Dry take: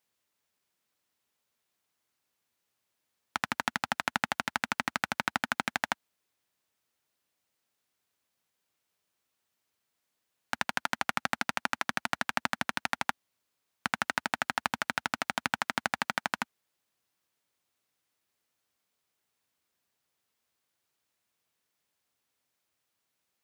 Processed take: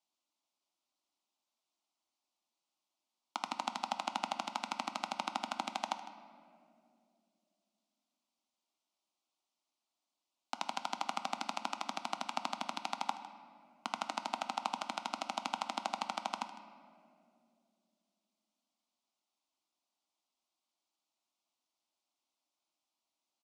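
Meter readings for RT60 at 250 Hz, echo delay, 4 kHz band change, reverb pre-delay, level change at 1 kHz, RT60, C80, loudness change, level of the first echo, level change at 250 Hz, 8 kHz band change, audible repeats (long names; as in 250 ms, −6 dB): 3.5 s, 155 ms, −5.0 dB, 6 ms, −3.5 dB, 2.6 s, 10.5 dB, −7.0 dB, −16.0 dB, −7.0 dB, −7.0 dB, 1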